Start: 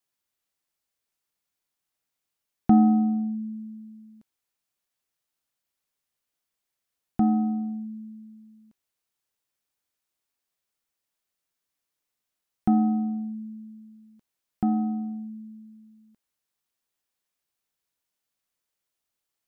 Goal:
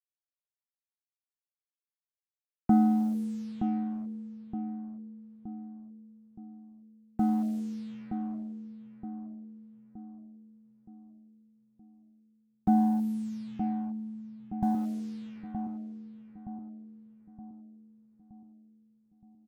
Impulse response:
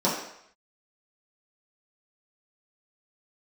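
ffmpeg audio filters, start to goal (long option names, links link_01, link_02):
-filter_complex "[0:a]afwtdn=0.0251,asettb=1/sr,asplit=3[link_01][link_02][link_03];[link_01]atrim=end=12.684[link_04];[link_02]atrim=start=12.68:end=14.75,asetpts=PTS-STARTPTS,afade=type=in:duration=0.004:curve=qsin,afade=type=out:start_time=2.066:duration=0.004:curve=qsin,aecho=1:1:1.2:0.94,atrim=end_sample=91287[link_05];[link_03]atrim=start=14.746[link_06];[link_04][link_05]acrossfade=duration=0.004:curve1=hsin:curve2=qsin[link_07];[link_07][link_06]acrossfade=duration=0.004:curve1=qsin:curve2=hsin,acrusher=bits=7:mix=0:aa=0.5,asplit=2[link_08][link_09];[link_09]adelay=920,lowpass=frequency=920:poles=1,volume=-6.5dB,asplit=2[link_10][link_11];[link_11]adelay=920,lowpass=frequency=920:poles=1,volume=0.53,asplit=2[link_12][link_13];[link_13]adelay=920,lowpass=frequency=920:poles=1,volume=0.53,asplit=2[link_14][link_15];[link_15]adelay=920,lowpass=frequency=920:poles=1,volume=0.53,asplit=2[link_16][link_17];[link_17]adelay=920,lowpass=frequency=920:poles=1,volume=0.53,asplit=2[link_18][link_19];[link_19]adelay=920,lowpass=frequency=920:poles=1,volume=0.53,asplit=2[link_20][link_21];[link_21]adelay=920,lowpass=frequency=920:poles=1,volume=0.53[link_22];[link_08][link_10][link_12][link_14][link_16][link_18][link_20][link_22]amix=inputs=8:normalize=0,volume=-5dB"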